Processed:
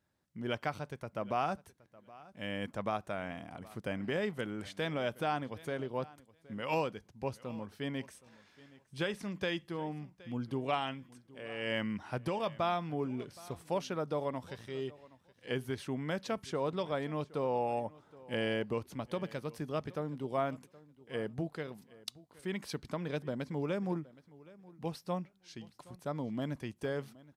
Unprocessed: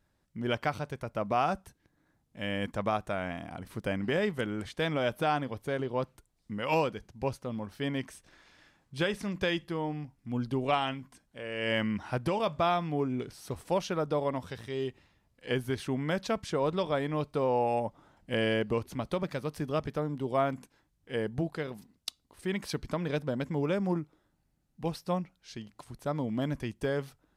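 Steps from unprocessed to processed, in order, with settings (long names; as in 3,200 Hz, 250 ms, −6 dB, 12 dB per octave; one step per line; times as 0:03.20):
high-pass filter 84 Hz
repeating echo 770 ms, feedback 16%, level −21 dB
0:04.63–0:05.81: one half of a high-frequency compander encoder only
level −5 dB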